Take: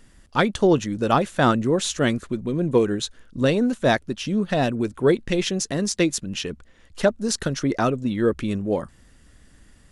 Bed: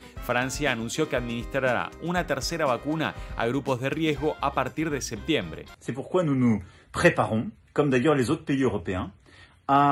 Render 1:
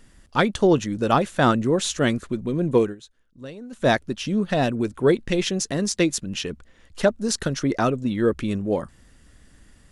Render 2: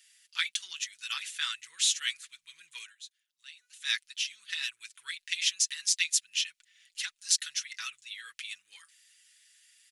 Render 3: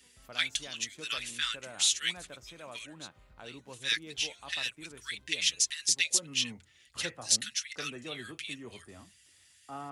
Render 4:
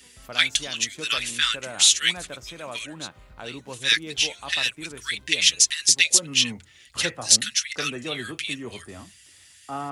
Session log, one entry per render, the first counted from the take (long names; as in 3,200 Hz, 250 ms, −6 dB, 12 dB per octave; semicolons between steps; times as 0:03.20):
0:02.82–0:03.83: duck −18 dB, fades 0.13 s
inverse Chebyshev high-pass filter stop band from 660 Hz, stop band 60 dB; comb filter 6.1 ms, depth 61%
mix in bed −22.5 dB
level +10 dB; brickwall limiter −2 dBFS, peak gain reduction 3 dB